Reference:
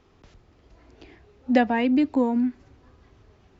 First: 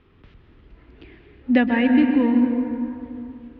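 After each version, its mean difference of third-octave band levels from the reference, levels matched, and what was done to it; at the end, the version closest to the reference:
4.5 dB: low-pass filter 3,300 Hz 24 dB per octave
parametric band 710 Hz −10 dB 1.1 octaves
dense smooth reverb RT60 2.7 s, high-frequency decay 0.55×, pre-delay 115 ms, DRR 4.5 dB
level +4.5 dB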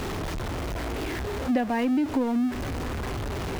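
15.5 dB: converter with a step at zero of −24.5 dBFS
downward compressor 3 to 1, threshold −23 dBFS, peak gain reduction 8.5 dB
high-shelf EQ 3,000 Hz −7.5 dB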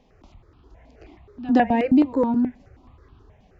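3.5 dB: high-shelf EQ 3,600 Hz −8.5 dB
on a send: backwards echo 117 ms −18 dB
on the sum: step-sequenced phaser 9.4 Hz 360–2,000 Hz
level +5.5 dB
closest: third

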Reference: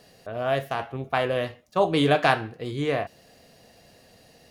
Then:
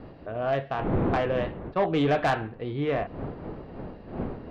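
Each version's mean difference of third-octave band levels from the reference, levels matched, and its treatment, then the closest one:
8.5 dB: wind on the microphone 400 Hz −33 dBFS
Bessel low-pass filter 2,300 Hz, order 8
soft clipping −17 dBFS, distortion −14 dB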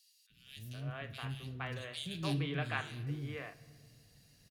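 11.0 dB: guitar amp tone stack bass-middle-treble 6-0-2
three-band delay without the direct sound highs, lows, mids 300/470 ms, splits 330/2,900 Hz
rectangular room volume 3,000 cubic metres, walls mixed, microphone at 0.4 metres
level +8 dB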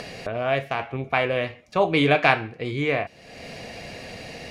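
6.0 dB: parametric band 2,300 Hz +12 dB 0.32 octaves
upward compression, threshold −24 dBFS
high-frequency loss of the air 58 metres
level +1 dB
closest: third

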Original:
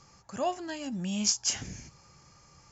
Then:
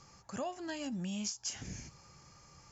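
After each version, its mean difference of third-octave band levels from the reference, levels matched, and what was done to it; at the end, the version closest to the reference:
4.0 dB: downward compressor 12 to 1, threshold −34 dBFS, peak gain reduction 13.5 dB
level −1 dB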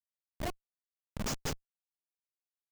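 19.5 dB: comparator with hysteresis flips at −24.5 dBFS
level +1 dB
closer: first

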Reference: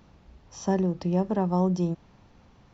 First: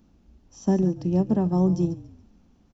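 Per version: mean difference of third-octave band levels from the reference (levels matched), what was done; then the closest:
4.5 dB: graphic EQ with 10 bands 125 Hz −11 dB, 250 Hz +6 dB, 500 Hz −7 dB, 1,000 Hz −9 dB, 2,000 Hz −9 dB, 4,000 Hz −7 dB
echo with shifted repeats 142 ms, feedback 41%, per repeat −41 Hz, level −13 dB
expander for the loud parts 1.5 to 1, over −39 dBFS
level +7 dB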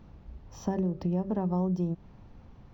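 3.0 dB: spectral tilt −2 dB per octave
hum removal 192.7 Hz, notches 3
downward compressor 3 to 1, threshold −26 dBFS, peak gain reduction 8 dB
linearly interpolated sample-rate reduction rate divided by 2×
level −1.5 dB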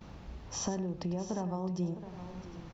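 9.0 dB: in parallel at −1 dB: brickwall limiter −24.5 dBFS, peak gain reduction 11.5 dB
on the sum: downward compressor 6 to 1, threshold −34 dBFS, peak gain reduction 16 dB
multi-tap delay 99/661/757 ms −12.5/−13/−16 dB
noise gate −56 dBFS, range −16 dB
level +1 dB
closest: second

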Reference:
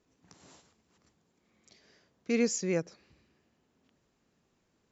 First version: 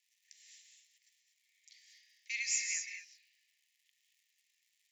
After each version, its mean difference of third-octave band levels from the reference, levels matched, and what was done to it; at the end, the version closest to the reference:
14.0 dB: reverb whose tail is shaped and stops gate 260 ms rising, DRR 3 dB
surface crackle 200 per second −61 dBFS
Chebyshev high-pass filter 1,800 Hz, order 8
level +1.5 dB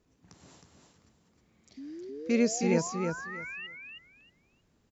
4.5 dB: low-shelf EQ 150 Hz +9.5 dB
sound drawn into the spectrogram rise, 0:01.77–0:03.67, 260–2,900 Hz −42 dBFS
repeating echo 315 ms, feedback 20%, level −4.5 dB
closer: second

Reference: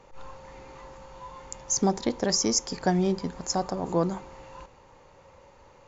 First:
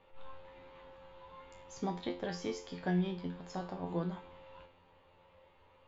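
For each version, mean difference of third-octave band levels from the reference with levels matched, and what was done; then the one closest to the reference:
3.5 dB: high shelf with overshoot 4,500 Hz −10.5 dB, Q 3
tuned comb filter 88 Hz, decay 0.35 s, harmonics all, mix 90%
level −1.5 dB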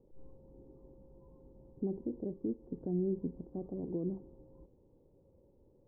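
11.0 dB: brickwall limiter −20 dBFS, peak gain reduction 8 dB
transistor ladder low-pass 430 Hz, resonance 40%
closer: first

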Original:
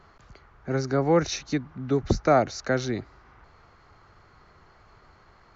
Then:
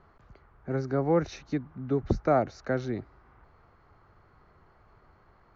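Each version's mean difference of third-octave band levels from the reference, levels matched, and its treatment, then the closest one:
2.5 dB: low-pass filter 1,300 Hz 6 dB per octave
level −3 dB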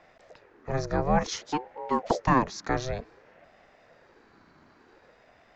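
4.5 dB: ring modulator whose carrier an LFO sweeps 460 Hz, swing 50%, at 0.55 Hz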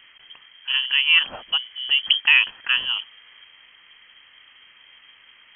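13.5 dB: voice inversion scrambler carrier 3,200 Hz
level +3.5 dB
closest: first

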